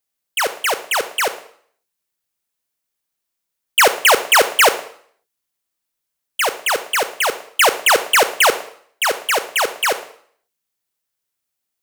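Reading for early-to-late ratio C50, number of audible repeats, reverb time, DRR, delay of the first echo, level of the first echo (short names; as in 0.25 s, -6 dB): 12.5 dB, none, 0.55 s, 10.5 dB, none, none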